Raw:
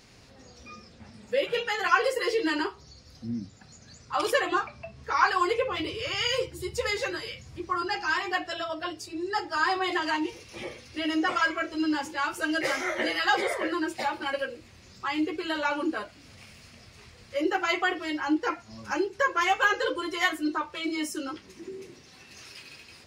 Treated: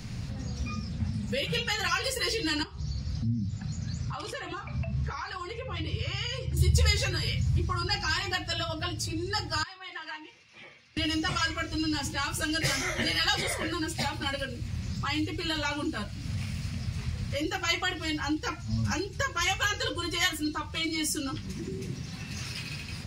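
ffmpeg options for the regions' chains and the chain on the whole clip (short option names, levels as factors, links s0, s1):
-filter_complex "[0:a]asettb=1/sr,asplit=3[s0][s1][s2];[s0]atrim=end=2.634[s3];[s1]atrim=start=2.63:end=6.57,asetpts=PTS-STARTPTS,afade=t=in:d=0.004:c=qsin,afade=t=out:st=3.936:d=0.004:c=qsin,acompressor=threshold=0.00447:ratio=2:attack=3.2:release=140:knee=1:detection=peak,lowpass=7400[s4];[s2]atrim=start=6.566[s5];[s3][s4]acrossfade=d=0.004:c1=hsin:c2=qsin[s6];[s6][s5]acrossfade=d=0.004:c1=qsin:c2=hsin,asettb=1/sr,asplit=3[s7][s8][s9];[s7]atrim=end=9.634[s10];[s8]atrim=start=9.63:end=10.97,asetpts=PTS-STARTPTS,afade=t=in:d=0.004:c=qsin,afade=t=out:st=1.336:d=0.004:c=qsin,lowpass=2100,aderivative[s11];[s9]atrim=start=10.966[s12];[s10][s11]acrossfade=d=0.004:c1=hsin:c2=qsin[s13];[s13][s12]acrossfade=d=0.004:c1=qsin:c2=hsin,lowshelf=f=250:t=q:w=1.5:g=13,acrossover=split=140|3000[s14][s15][s16];[s15]acompressor=threshold=0.00562:ratio=2.5[s17];[s14][s17][s16]amix=inputs=3:normalize=0,volume=2.37"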